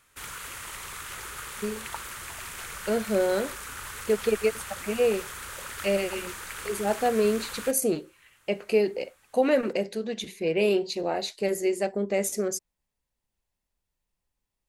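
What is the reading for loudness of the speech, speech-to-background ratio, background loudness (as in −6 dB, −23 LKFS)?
−27.5 LKFS, 9.5 dB, −37.0 LKFS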